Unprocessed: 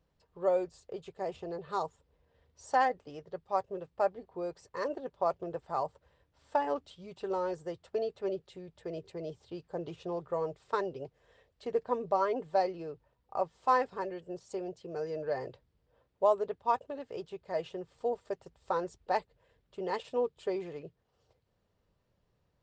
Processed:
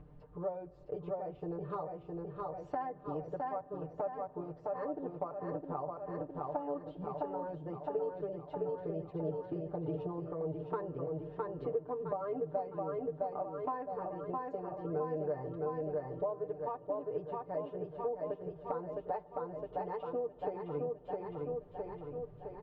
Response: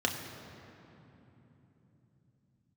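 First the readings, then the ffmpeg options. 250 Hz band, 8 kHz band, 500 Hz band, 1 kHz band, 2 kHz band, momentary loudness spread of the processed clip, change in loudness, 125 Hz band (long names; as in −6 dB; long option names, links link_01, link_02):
+0.5 dB, can't be measured, −3.0 dB, −6.5 dB, −13.0 dB, 5 LU, −4.5 dB, +6.0 dB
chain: -filter_complex "[0:a]acompressor=mode=upward:threshold=-51dB:ratio=2.5,lowpass=1400,aecho=1:1:661|1322|1983|2644|3305|3966|4627:0.531|0.281|0.149|0.079|0.0419|0.0222|0.0118,acompressor=threshold=-39dB:ratio=6,lowshelf=frequency=310:gain=9,aecho=1:1:6.7:0.97,asplit=2[link_01][link_02];[link_02]highpass=160[link_03];[1:a]atrim=start_sample=2205,lowpass=2900[link_04];[link_03][link_04]afir=irnorm=-1:irlink=0,volume=-23dB[link_05];[link_01][link_05]amix=inputs=2:normalize=0,volume=-2dB"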